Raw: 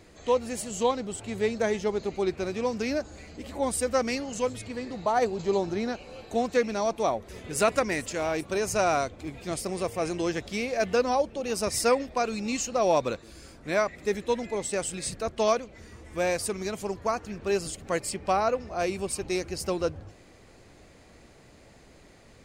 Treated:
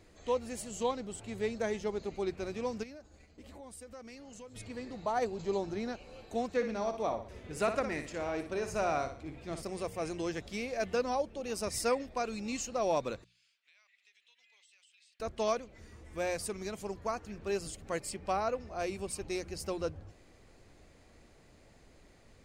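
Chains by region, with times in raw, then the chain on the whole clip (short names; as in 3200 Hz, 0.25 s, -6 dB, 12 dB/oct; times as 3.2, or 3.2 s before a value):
2.83–4.56 expander -39 dBFS + compressor 4:1, threshold -41 dBFS
6.52–9.63 LPF 3400 Hz 6 dB/oct + flutter echo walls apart 10.2 m, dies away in 0.41 s
13.24–15.2 ladder band-pass 3300 Hz, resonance 50% + compressor 16:1, threshold -53 dBFS
whole clip: low shelf 63 Hz +8 dB; notches 60/120/180 Hz; gain -7.5 dB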